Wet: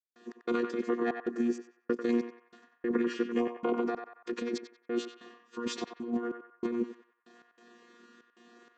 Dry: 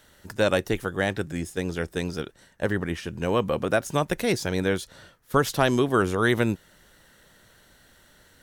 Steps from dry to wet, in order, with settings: vocoder on a held chord bare fifth, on B3; compressor with a negative ratio -30 dBFS, ratio -1; trance gate ".x.xxxx.xx..xx." 99 bpm -60 dB; on a send: band-passed feedback delay 89 ms, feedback 49%, band-pass 1.4 kHz, level -5 dB; on the sum: speed mistake 25 fps video run at 24 fps

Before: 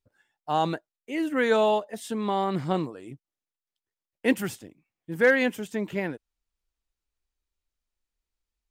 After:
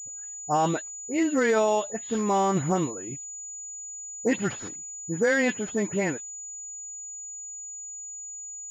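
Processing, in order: delay that grows with frequency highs late, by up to 132 ms; peak limiter -18 dBFS, peak gain reduction 8 dB; class-D stage that switches slowly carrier 6.9 kHz; trim +3.5 dB

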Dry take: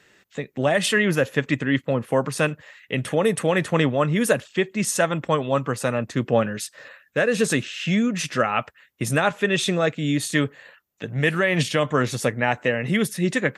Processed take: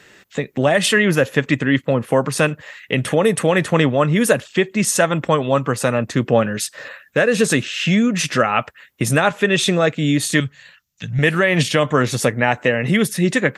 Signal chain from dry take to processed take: in parallel at +2 dB: compression, threshold -28 dBFS, peak gain reduction 13.5 dB; 10.40–11.19 s: on the sum: FFT filter 160 Hz 0 dB, 380 Hz -21 dB, 6.1 kHz +4 dB, 10 kHz -7 dB; trim +2 dB

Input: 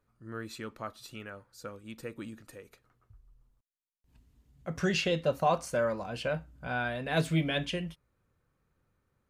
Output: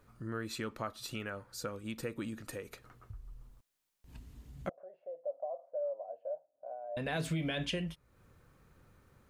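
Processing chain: peak limiter -24 dBFS, peak gain reduction 9 dB; compression 2:1, threshold -56 dBFS, peak gain reduction 15 dB; 4.69–6.97 s: Butterworth band-pass 620 Hz, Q 4; trim +12 dB

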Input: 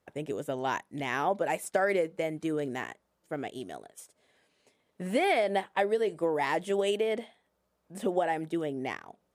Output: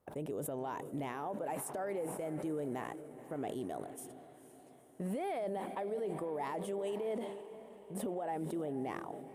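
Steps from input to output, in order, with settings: high-order bell 3.4 kHz -9.5 dB 2.6 oct; compression, threshold -35 dBFS, peak gain reduction 12.5 dB; peak limiter -32 dBFS, peak gain reduction 7.5 dB; echo that smears into a reverb 487 ms, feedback 56%, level -14 dB; decay stretcher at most 43 dB/s; trim +1.5 dB

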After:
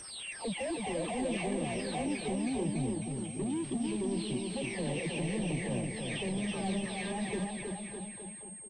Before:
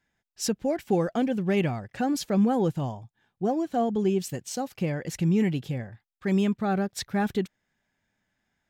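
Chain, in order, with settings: delay that grows with frequency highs early, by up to 604 ms; high-pass 85 Hz 24 dB/octave; spectral selection erased 2.04–4.57 s, 440–2100 Hz; peak limiter -28.5 dBFS, peak gain reduction 13.5 dB; overdrive pedal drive 34 dB, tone 3 kHz, clips at -18 dBFS; touch-sensitive phaser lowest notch 230 Hz, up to 1.4 kHz, full sweep at -30 dBFS; bouncing-ball echo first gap 320 ms, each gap 0.9×, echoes 5; class-D stage that switches slowly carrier 8.5 kHz; trim -8.5 dB

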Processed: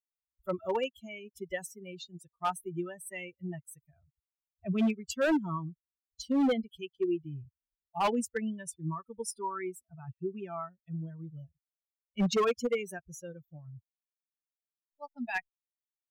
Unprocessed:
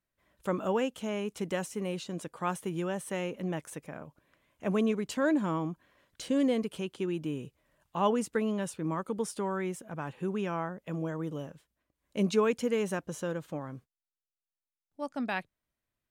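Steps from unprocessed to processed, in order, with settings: expander on every frequency bin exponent 3; hard clipper -30.5 dBFS, distortion -10 dB; trim +7.5 dB

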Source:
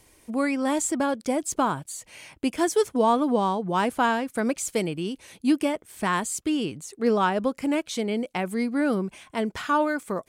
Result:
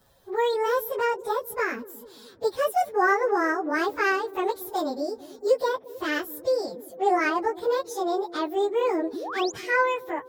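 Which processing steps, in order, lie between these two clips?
frequency-domain pitch shifter +9 st; peaking EQ 2.7 kHz -6 dB 0.53 oct; painted sound rise, 9.13–9.52 s, 240–7500 Hz -36 dBFS; treble shelf 7.2 kHz -7 dB; feedback echo behind a low-pass 222 ms, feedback 59%, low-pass 450 Hz, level -13 dB; trim +2.5 dB

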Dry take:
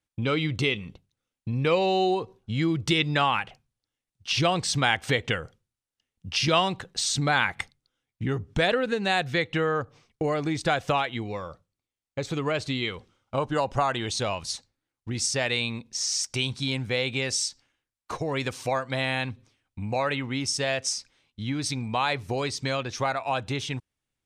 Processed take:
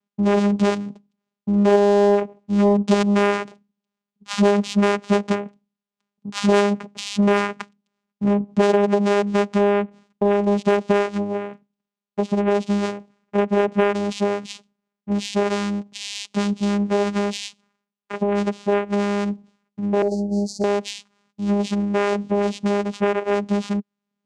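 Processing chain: vocoder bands 4, saw 203 Hz; dynamic bell 450 Hz, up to +4 dB, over -39 dBFS, Q 1.2; 20.02–20.64 s: Chebyshev band-stop 770–4400 Hz, order 5; in parallel at -4 dB: hard clipper -20.5 dBFS, distortion -14 dB; on the sum: trim +2 dB

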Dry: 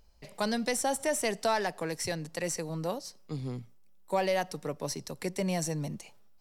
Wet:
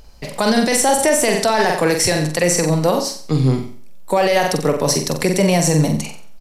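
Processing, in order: resampled via 32 kHz; flutter echo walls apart 7.8 m, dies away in 0.44 s; loudness maximiser +23.5 dB; trim -5 dB

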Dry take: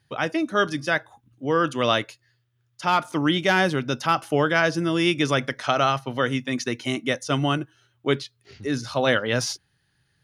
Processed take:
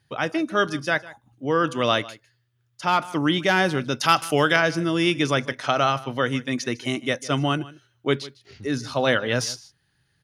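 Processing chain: 4.01–4.56 s: treble shelf 2.1 kHz +11.5 dB; on a send: delay 152 ms -19.5 dB

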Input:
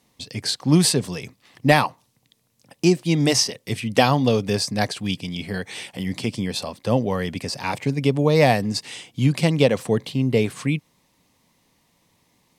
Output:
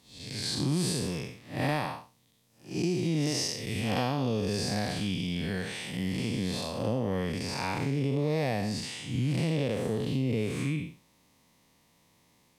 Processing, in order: spectral blur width 196 ms; compression 4:1, threshold -26 dBFS, peak gain reduction 10.5 dB

